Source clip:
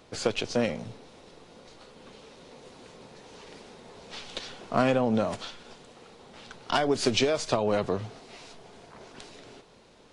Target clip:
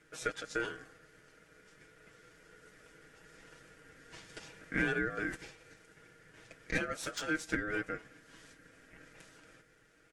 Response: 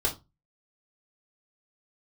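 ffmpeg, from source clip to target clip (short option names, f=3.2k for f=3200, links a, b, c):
-filter_complex "[0:a]highpass=650,aecho=1:1:6.3:0.72,asettb=1/sr,asplit=3[a][b][c];[a]atrim=end=7.024[d];[b]atrim=start=7.02:end=8.26,asetpts=PTS-STARTPTS,afade=t=in:d=0.004:c=qsin,afade=t=out:st=1.236:d=0.004:c=qsin,aeval=exprs='0.299*(cos(1*acos(clip(val(0)/0.299,-1,1)))-cos(1*PI/2))+0.00944*(cos(7*acos(clip(val(0)/0.299,-1,1)))-cos(7*PI/2))':c=same[e];[c]atrim=start=8.256[f];[d][e]acrossfade=d=0.004:c1=hsin:c2=qsin[g];[g][f]acrossfade=d=0.004:c1=qsin:c2=hsin,equalizer=f=3.5k:t=o:w=1.3:g=-14.5,bandreject=f=3.1k:w=6.5,aeval=exprs='val(0)*sin(2*PI*940*n/s)':c=same,volume=-1.5dB"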